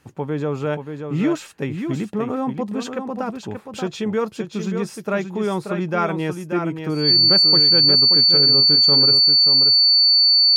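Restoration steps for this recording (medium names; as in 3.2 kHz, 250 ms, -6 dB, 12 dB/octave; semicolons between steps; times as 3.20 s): band-stop 4.5 kHz, Q 30; inverse comb 581 ms -7 dB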